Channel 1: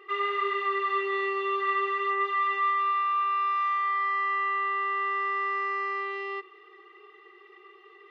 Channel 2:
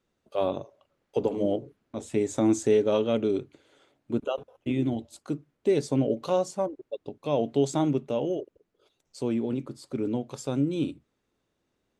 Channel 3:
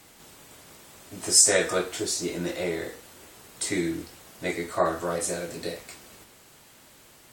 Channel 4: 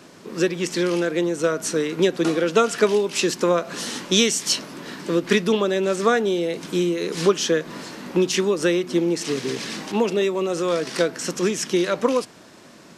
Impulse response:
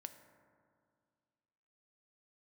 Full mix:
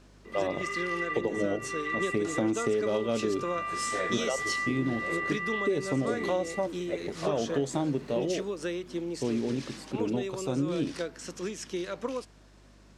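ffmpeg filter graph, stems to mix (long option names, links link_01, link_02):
-filter_complex "[0:a]equalizer=frequency=2100:width=1.6:gain=13,adelay=250,volume=-11.5dB[link_01];[1:a]volume=-0.5dB,asplit=2[link_02][link_03];[2:a]aemphasis=mode=reproduction:type=75kf,adelay=2450,volume=-9.5dB[link_04];[3:a]lowpass=11000,volume=-13.5dB[link_05];[link_03]apad=whole_len=368579[link_06];[link_01][link_06]sidechaincompress=threshold=-29dB:ratio=8:attack=16:release=309[link_07];[link_07][link_02][link_04][link_05]amix=inputs=4:normalize=0,aeval=exprs='val(0)+0.00158*(sin(2*PI*50*n/s)+sin(2*PI*2*50*n/s)/2+sin(2*PI*3*50*n/s)/3+sin(2*PI*4*50*n/s)/4+sin(2*PI*5*50*n/s)/5)':channel_layout=same,acompressor=threshold=-24dB:ratio=6"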